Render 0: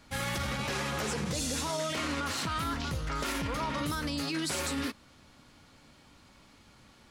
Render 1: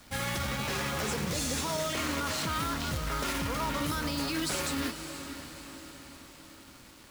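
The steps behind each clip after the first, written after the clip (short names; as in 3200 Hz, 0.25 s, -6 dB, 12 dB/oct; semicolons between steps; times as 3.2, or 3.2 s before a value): companded quantiser 4-bit; diffused feedback echo 0.521 s, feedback 55%, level -10 dB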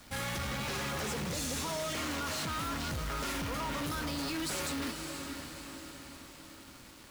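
hard clip -33 dBFS, distortion -8 dB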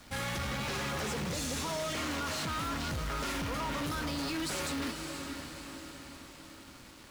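high shelf 10000 Hz -6 dB; gain +1 dB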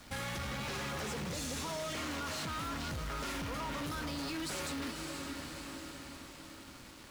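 compressor, threshold -37 dBFS, peak gain reduction 4 dB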